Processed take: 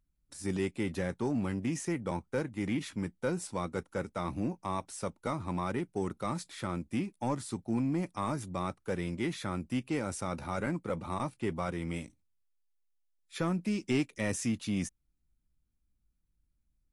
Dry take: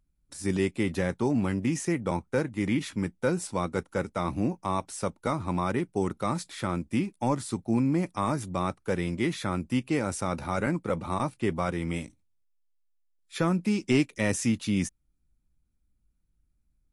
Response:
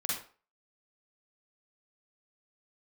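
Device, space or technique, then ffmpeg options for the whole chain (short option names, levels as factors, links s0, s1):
parallel distortion: -filter_complex "[0:a]asplit=2[s0][s1];[s1]asoftclip=type=hard:threshold=0.0501,volume=0.355[s2];[s0][s2]amix=inputs=2:normalize=0,volume=0.422"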